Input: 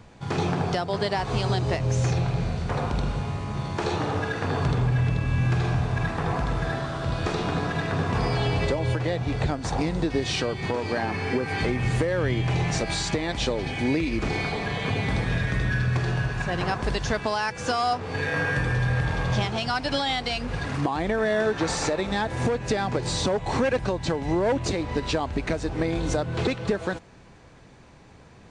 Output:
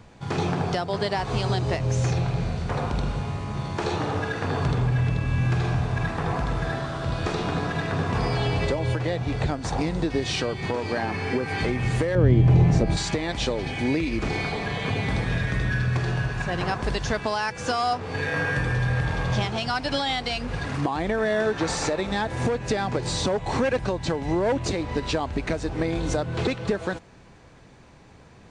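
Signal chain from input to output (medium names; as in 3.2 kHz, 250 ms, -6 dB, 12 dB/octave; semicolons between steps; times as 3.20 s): 12.15–12.97 s: tilt shelf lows +9.5 dB, about 760 Hz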